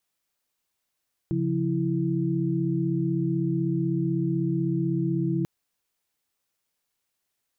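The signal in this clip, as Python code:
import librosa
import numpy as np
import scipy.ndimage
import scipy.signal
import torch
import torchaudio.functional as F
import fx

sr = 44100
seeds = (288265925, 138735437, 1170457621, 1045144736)

y = fx.chord(sr, length_s=4.14, notes=(49, 53, 64), wave='sine', level_db=-27.0)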